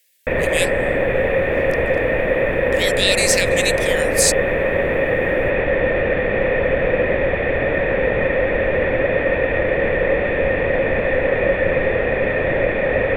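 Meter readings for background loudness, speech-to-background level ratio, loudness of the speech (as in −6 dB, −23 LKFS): −18.5 LKFS, −1.5 dB, −20.0 LKFS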